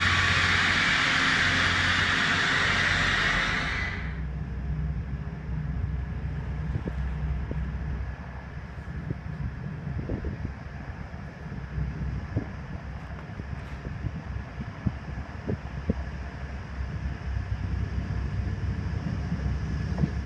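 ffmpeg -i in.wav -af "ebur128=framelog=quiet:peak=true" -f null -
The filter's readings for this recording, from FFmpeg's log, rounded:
Integrated loudness:
  I:         -28.2 LUFS
  Threshold: -38.6 LUFS
Loudness range:
  LRA:        13.2 LU
  Threshold: -49.8 LUFS
  LRA low:   -36.0 LUFS
  LRA high:  -22.8 LUFS
True peak:
  Peak:      -10.5 dBFS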